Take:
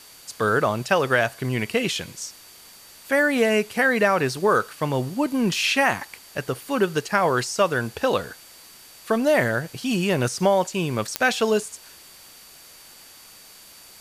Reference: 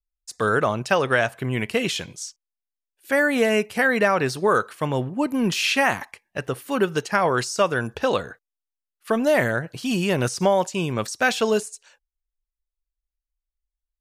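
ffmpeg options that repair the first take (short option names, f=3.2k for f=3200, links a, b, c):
-af "adeclick=t=4,bandreject=f=4.6k:w=30,afwtdn=0.005"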